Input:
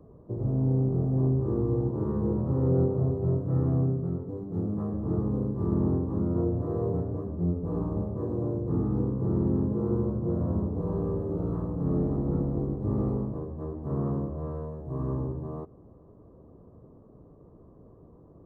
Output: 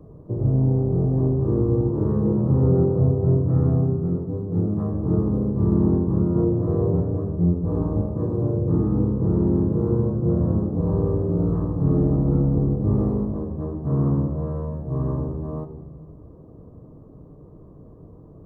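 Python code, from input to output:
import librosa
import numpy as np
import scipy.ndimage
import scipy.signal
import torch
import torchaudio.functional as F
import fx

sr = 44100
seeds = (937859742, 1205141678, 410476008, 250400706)

y = fx.low_shelf(x, sr, hz=240.0, db=5.5)
y = fx.room_shoebox(y, sr, seeds[0], volume_m3=710.0, walls='mixed', distance_m=0.51)
y = F.gain(torch.from_numpy(y), 3.5).numpy()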